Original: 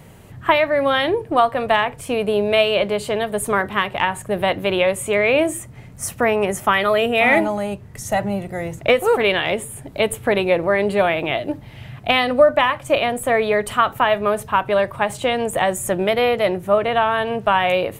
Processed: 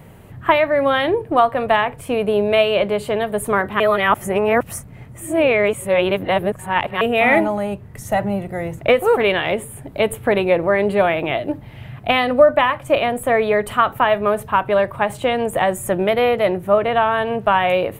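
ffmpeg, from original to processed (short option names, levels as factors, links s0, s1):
-filter_complex "[0:a]asplit=3[s0][s1][s2];[s0]atrim=end=3.802[s3];[s1]atrim=start=3.798:end=7.012,asetpts=PTS-STARTPTS,areverse[s4];[s2]atrim=start=7.008[s5];[s3][s4]acrossfade=d=0.004:c1=hsin:c2=hsin[s6];[s6][s5]acrossfade=d=0.004:c1=hsin:c2=hsin,equalizer=f=6000:w=0.73:g=-8.5,volume=1.19"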